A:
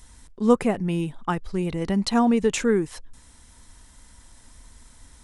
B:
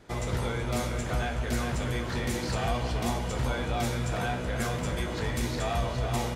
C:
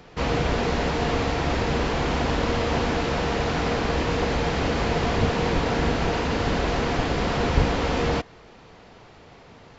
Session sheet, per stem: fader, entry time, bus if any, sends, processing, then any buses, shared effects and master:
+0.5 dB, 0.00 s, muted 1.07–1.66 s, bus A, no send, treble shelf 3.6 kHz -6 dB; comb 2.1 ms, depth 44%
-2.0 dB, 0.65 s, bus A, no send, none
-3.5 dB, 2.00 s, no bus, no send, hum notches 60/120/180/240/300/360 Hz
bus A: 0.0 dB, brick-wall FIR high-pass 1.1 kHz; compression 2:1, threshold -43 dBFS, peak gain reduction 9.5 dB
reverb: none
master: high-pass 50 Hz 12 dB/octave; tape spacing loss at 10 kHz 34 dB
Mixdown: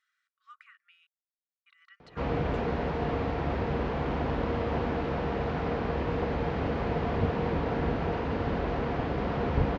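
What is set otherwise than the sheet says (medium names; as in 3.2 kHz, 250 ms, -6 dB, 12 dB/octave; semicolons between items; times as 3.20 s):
stem A +0.5 dB -> -9.5 dB; stem B: muted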